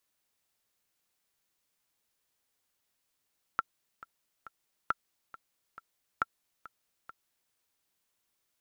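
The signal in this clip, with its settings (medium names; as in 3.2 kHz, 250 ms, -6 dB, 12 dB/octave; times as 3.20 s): metronome 137 bpm, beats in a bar 3, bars 3, 1.35 kHz, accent 19 dB -14 dBFS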